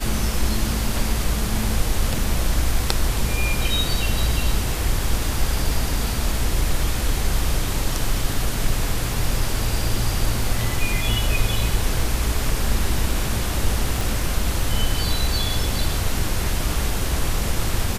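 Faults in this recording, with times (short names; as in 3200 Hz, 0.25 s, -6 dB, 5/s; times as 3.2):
14.01 pop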